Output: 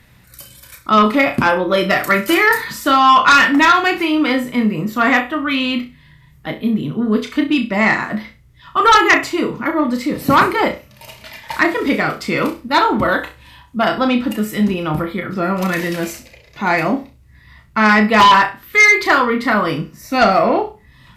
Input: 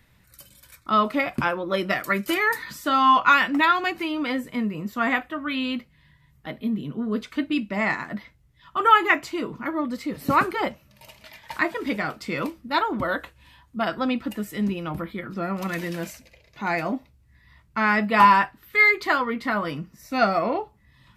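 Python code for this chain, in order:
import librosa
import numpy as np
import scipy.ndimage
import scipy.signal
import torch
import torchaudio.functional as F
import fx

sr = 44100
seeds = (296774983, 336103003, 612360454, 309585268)

y = fx.room_flutter(x, sr, wall_m=5.6, rt60_s=0.28)
y = fx.cheby_harmonics(y, sr, harmonics=(5,), levels_db=(-8,), full_scale_db=-2.5)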